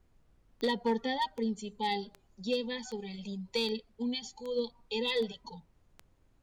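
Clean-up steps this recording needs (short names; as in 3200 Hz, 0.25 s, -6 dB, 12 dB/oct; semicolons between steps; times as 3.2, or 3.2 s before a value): clip repair -23 dBFS; de-click; expander -58 dBFS, range -21 dB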